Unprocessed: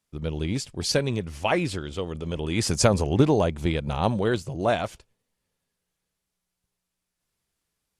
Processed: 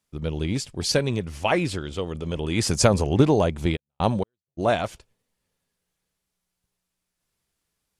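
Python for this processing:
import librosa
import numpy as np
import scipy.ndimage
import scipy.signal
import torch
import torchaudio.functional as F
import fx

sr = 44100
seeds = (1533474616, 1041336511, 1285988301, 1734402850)

y = fx.step_gate(x, sr, bpm=195, pattern='x......xx', floor_db=-60.0, edge_ms=4.5, at=(3.75, 4.57), fade=0.02)
y = y * 10.0 ** (1.5 / 20.0)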